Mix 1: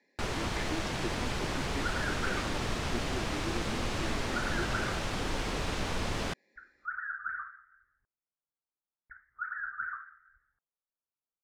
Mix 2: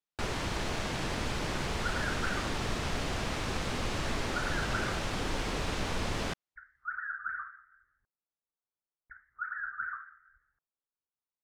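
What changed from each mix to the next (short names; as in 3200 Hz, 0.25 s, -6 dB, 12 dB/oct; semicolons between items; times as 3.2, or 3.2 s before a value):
speech: muted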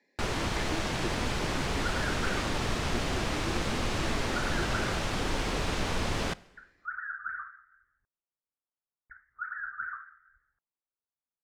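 speech: unmuted; reverb: on, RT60 1.1 s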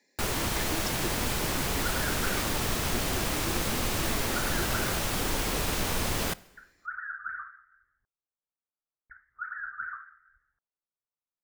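speech: remove LPF 3100 Hz; first sound: remove air absorption 86 m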